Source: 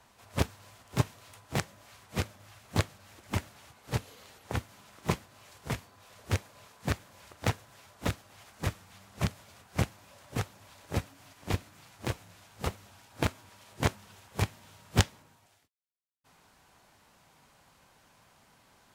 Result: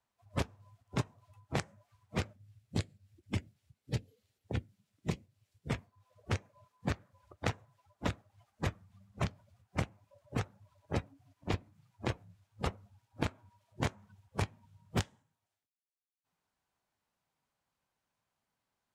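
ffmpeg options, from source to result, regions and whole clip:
ffmpeg -i in.wav -filter_complex "[0:a]asettb=1/sr,asplit=3[link_01][link_02][link_03];[link_01]atrim=end=2.334[link_04];[link_02]atrim=start=2.33:end=5.71,asetpts=PTS-STARTPTS,afade=type=in:duration=0.004:curve=qsin,afade=type=out:start_time=3.376:duration=0.004:curve=qsin,highpass=frequency=47:poles=1,equalizer=frequency=1000:width_type=o:width=1.7:gain=-11.5,bandreject=frequency=6400:width=29[link_05];[link_03]atrim=start=5.706[link_06];[link_04][link_05]acrossfade=duration=0.004:curve1=hsin:curve2=qsin[link_07];[link_07][link_06]acrossfade=duration=0.004:curve1=qsin:curve2=hsin,afftdn=noise_reduction=26:noise_floor=-45,acompressor=threshold=-31dB:ratio=8,volume=2dB" out.wav

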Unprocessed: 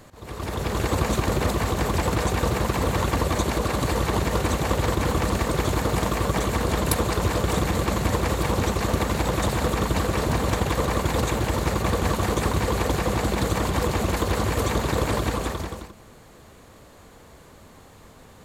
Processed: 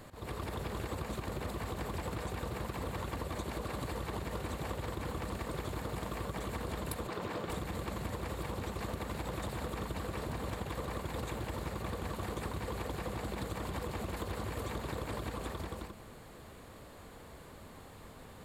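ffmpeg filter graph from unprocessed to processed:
ffmpeg -i in.wav -filter_complex "[0:a]asettb=1/sr,asplit=3[link_01][link_02][link_03];[link_01]atrim=end=7.074[link_04];[link_02]atrim=start=7.07:end=7.5,asetpts=PTS-STARTPTS,afade=type=in:duration=0.004:curve=qsin,afade=type=out:start_time=0.426:duration=0.004:curve=qsin,highpass=160,equalizer=frequency=11000:width_type=o:width=1.4:gain=-10[link_05];[link_03]atrim=start=7.496[link_06];[link_04][link_05]acrossfade=duration=0.004:curve1=hsin:curve2=qsin[link_07];[link_07][link_06]acrossfade=duration=0.004:curve1=qsin:curve2=hsin,equalizer=frequency=6100:width_type=o:width=0.39:gain=-7.5,acompressor=threshold=-33dB:ratio=6,volume=-3dB" out.wav

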